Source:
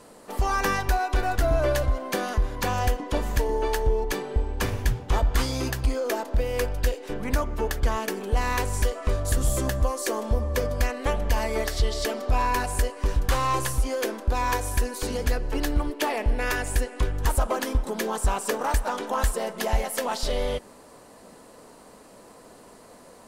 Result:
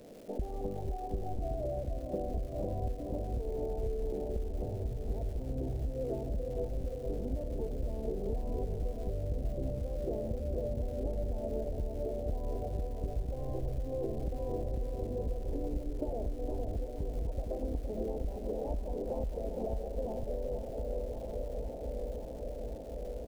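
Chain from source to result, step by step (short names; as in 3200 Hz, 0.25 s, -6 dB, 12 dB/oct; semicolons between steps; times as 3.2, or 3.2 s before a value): regenerating reverse delay 0.531 s, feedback 79%, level -12 dB; steep low-pass 690 Hz 48 dB/oct; compressor 6:1, threshold -33 dBFS, peak gain reduction 16 dB; feedback echo 0.463 s, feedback 41%, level -6.5 dB; crackle 540/s -49 dBFS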